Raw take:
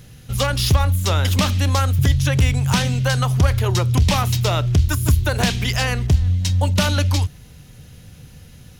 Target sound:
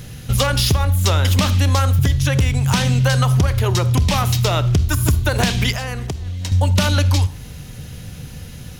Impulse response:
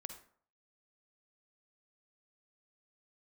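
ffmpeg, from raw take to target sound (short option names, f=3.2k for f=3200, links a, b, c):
-filter_complex "[0:a]acompressor=threshold=-22dB:ratio=6,asplit=2[a][b];[1:a]atrim=start_sample=2205[c];[b][c]afir=irnorm=-1:irlink=0,volume=-1dB[d];[a][d]amix=inputs=2:normalize=0,asettb=1/sr,asplit=3[e][f][g];[e]atrim=end=5.714[h];[f]atrim=start=5.71:end=6.52,asetpts=PTS-STARTPTS,afade=t=in:d=0.004:c=qsin,afade=t=out:st=0.806:d=0.004:c=qsin,acrossover=split=270|1800|5900[i][j][k][l];[i]acompressor=threshold=-31dB:ratio=4[m];[j]acompressor=threshold=-34dB:ratio=4[n];[k]acompressor=threshold=-41dB:ratio=4[o];[l]acompressor=threshold=-43dB:ratio=4[p];[m][n][o][p]amix=inputs=4:normalize=0[q];[g]atrim=start=6.516[r];[h][q]acrossfade=d=0.004:c1=hsin:c2=qsin[s];[s][r]acrossfade=d=0.004:c1=qsin:c2=hsin,volume=5dB"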